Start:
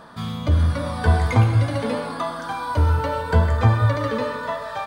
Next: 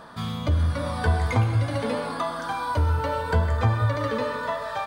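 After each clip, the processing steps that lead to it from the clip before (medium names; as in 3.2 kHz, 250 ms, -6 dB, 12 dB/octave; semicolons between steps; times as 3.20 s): peaking EQ 200 Hz -2 dB 1.5 oct; compression 1.5:1, threshold -25 dBFS, peak gain reduction 5 dB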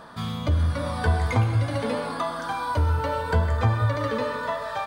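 no audible change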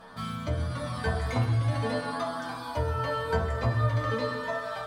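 inharmonic resonator 62 Hz, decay 0.44 s, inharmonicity 0.002; on a send at -6 dB: reverberation RT60 0.40 s, pre-delay 4 ms; on the sum: trim +5.5 dB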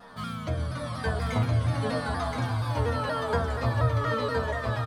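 delay 1022 ms -3.5 dB; vibrato with a chosen wave saw down 4.2 Hz, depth 100 cents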